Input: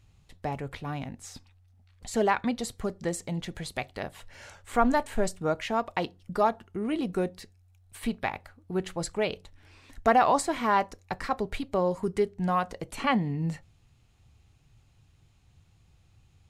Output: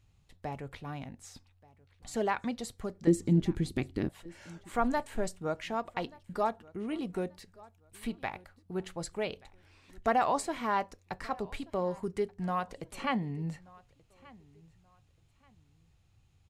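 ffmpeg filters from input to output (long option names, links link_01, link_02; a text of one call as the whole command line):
ffmpeg -i in.wav -filter_complex "[0:a]asettb=1/sr,asplit=3[link_01][link_02][link_03];[link_01]atrim=end=3.074[link_04];[link_02]atrim=start=3.07:end=4.09,asetpts=PTS-STARTPTS,afade=type=in:duration=0.004:curve=qsin,afade=type=out:start_time=1.016:duration=0.004:curve=qsin,lowshelf=frequency=460:width_type=q:width=3:gain=11.5[link_05];[link_03]atrim=start=4.086[link_06];[link_04][link_05]acrossfade=duration=0.004:curve1=hsin:curve2=qsin[link_07];[link_07][link_06]acrossfade=duration=0.004:curve1=qsin:curve2=hsin,aecho=1:1:1181|2362:0.0668|0.0187,volume=-6dB" out.wav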